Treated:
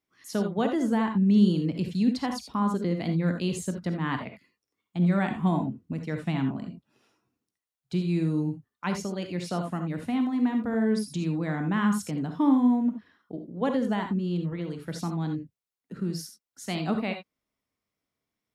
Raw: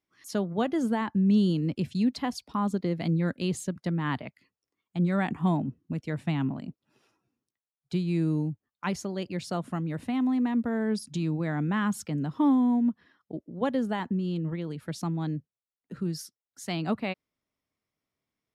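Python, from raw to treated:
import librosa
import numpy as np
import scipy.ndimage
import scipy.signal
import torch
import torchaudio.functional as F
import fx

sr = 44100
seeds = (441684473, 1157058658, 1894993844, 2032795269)

y = fx.rev_gated(x, sr, seeds[0], gate_ms=100, shape='rising', drr_db=5.0)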